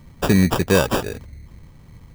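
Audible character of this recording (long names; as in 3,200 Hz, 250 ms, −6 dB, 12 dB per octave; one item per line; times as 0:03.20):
aliases and images of a low sample rate 2,100 Hz, jitter 0%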